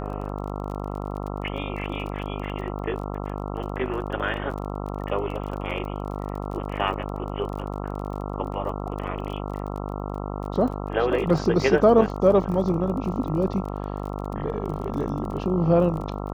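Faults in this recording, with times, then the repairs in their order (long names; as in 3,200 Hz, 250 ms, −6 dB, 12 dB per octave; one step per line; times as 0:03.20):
mains buzz 50 Hz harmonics 27 −31 dBFS
surface crackle 29 per second −33 dBFS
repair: click removal
hum removal 50 Hz, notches 27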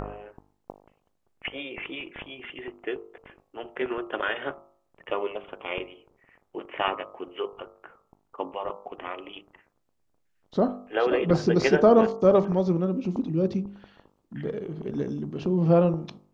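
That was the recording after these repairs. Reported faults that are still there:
none of them is left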